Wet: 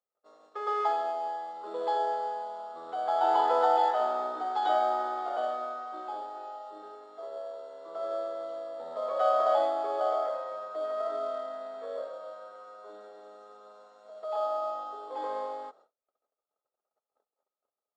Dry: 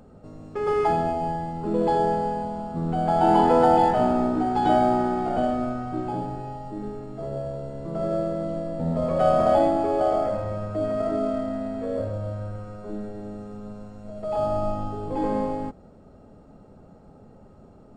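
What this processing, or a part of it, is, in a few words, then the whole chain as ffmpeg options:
phone speaker on a table: -filter_complex "[0:a]highpass=f=490:w=0.5412,highpass=f=490:w=1.3066,equalizer=f=1.2k:t=q:w=4:g=8,equalizer=f=2.5k:t=q:w=4:g=-7,equalizer=f=3.6k:t=q:w=4:g=9,lowpass=f=7.5k:w=0.5412,lowpass=f=7.5k:w=1.3066,agate=range=-35dB:threshold=-51dB:ratio=16:detection=peak,asettb=1/sr,asplit=3[a][b][c];[a]atrim=end=6.324[d];[b]atrim=start=6.32:end=6.95,asetpts=PTS-STARTPTS,afade=t=in:d=0.004:c=qsin,afade=t=out:st=0.626:d=0.004:c=qsin,asplit=2[e][f];[f]adelay=32,volume=-5.5dB[g];[e][g]amix=inputs=2:normalize=0,atrim=end_sample=27783[h];[c]atrim=start=6.946[i];[d][h]acrossfade=d=0.004:c1=hsin:c2=qsin[j];[j][i]acrossfade=d=0.004:c1=qsin:c2=hsin,volume=-6dB"

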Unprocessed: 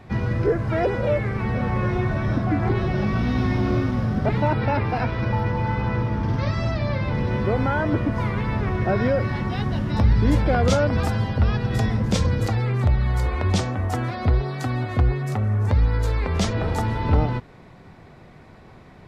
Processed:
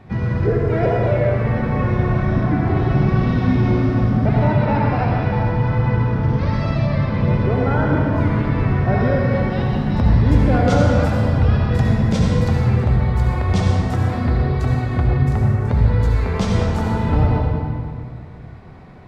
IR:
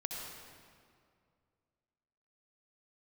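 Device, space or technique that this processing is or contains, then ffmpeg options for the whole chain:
swimming-pool hall: -filter_complex "[0:a]equalizer=f=160:w=1.4:g=4[a];[1:a]atrim=start_sample=2205[b];[a][b]afir=irnorm=-1:irlink=0,highshelf=f=4k:g=-6,volume=2dB"

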